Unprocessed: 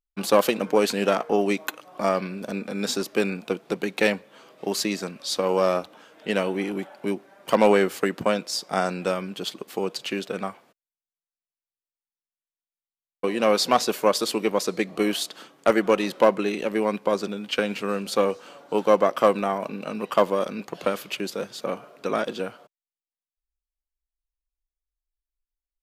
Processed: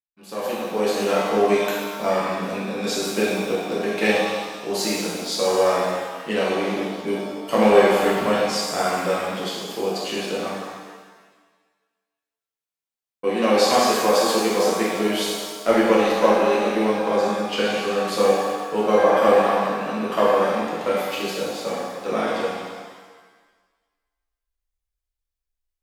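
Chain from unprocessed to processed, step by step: fade-in on the opening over 1.34 s; pitch-shifted reverb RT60 1.4 s, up +7 st, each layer -8 dB, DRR -7 dB; trim -5 dB

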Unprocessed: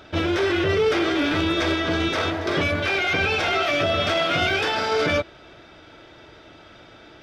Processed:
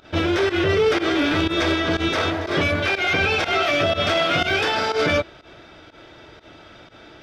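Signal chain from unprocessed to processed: volume shaper 122 bpm, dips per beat 1, -18 dB, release 93 ms; trim +2 dB

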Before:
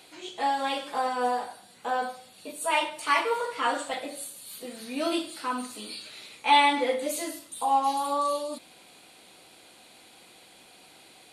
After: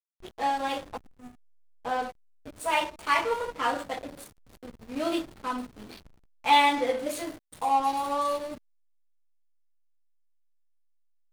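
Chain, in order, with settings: time-frequency box 0.97–1.75 s, 420–5800 Hz -22 dB; hysteresis with a dead band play -29.5 dBFS

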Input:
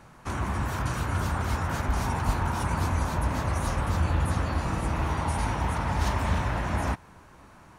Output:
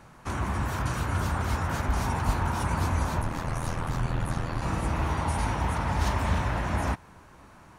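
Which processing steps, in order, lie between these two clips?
3.21–4.62 s: ring modulator 41 Hz

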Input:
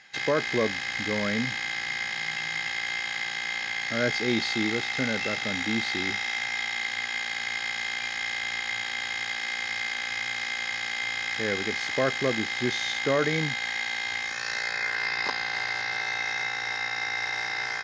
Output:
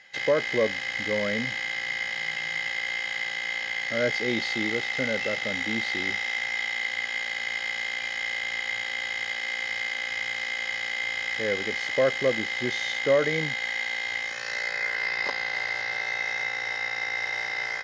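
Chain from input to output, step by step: small resonant body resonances 540/2000/3000 Hz, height 10 dB, ringing for 25 ms; trim -3.5 dB

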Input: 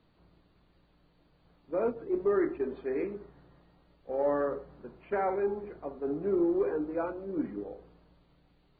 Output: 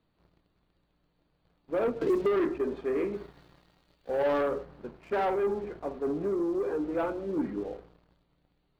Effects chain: 3.13–4.41 s: treble shelf 2.1 kHz +12 dB; 6.07–6.91 s: compression, threshold -30 dBFS, peak gain reduction 7 dB; waveshaping leveller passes 2; 2.01–2.46 s: three bands compressed up and down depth 100%; trim -3 dB

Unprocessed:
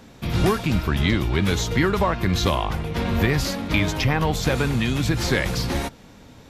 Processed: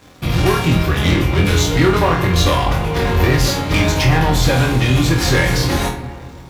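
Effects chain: bit crusher 11-bit; waveshaping leveller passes 3; comb of notches 220 Hz; flutter echo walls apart 4.1 m, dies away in 0.33 s; on a send at -8.5 dB: reverberation RT60 2.2 s, pre-delay 9 ms; on the sum: trim -2.5 dB

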